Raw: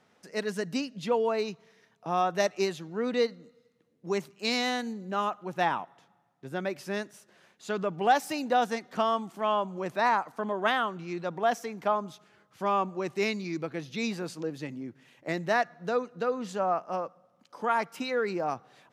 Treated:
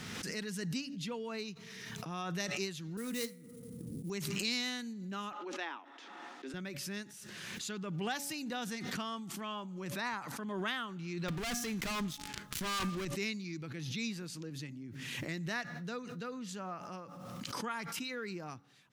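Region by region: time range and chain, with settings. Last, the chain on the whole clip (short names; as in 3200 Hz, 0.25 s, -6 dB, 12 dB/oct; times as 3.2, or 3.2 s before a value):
2.97–4.1 de-hum 121.4 Hz, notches 20 + low-pass opened by the level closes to 380 Hz, open at -23.5 dBFS + sample-rate reducer 10000 Hz, jitter 20%
5.32–6.54 steep high-pass 270 Hz 48 dB/oct + air absorption 120 m
11.28–13.05 resonator 240 Hz, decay 0.51 s, harmonics odd + sample leveller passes 5
whole clip: passive tone stack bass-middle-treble 6-0-2; de-hum 283 Hz, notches 3; backwards sustainer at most 23 dB/s; gain +11.5 dB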